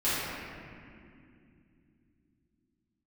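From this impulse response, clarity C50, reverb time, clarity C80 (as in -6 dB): -4.5 dB, 2.5 s, -1.5 dB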